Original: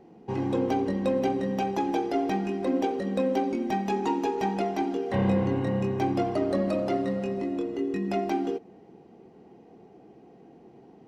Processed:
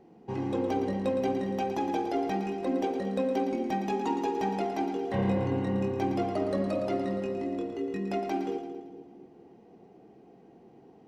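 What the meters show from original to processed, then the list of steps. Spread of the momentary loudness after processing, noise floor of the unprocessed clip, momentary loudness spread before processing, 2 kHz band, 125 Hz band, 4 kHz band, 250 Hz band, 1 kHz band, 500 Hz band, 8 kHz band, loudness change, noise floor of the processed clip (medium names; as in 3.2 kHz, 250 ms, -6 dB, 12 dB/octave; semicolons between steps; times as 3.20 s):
5 LU, -53 dBFS, 4 LU, -3.0 dB, -3.0 dB, -3.0 dB, -3.0 dB, -2.5 dB, -2.5 dB, no reading, -2.5 dB, -56 dBFS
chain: two-band feedback delay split 460 Hz, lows 226 ms, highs 113 ms, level -9 dB; trim -3.5 dB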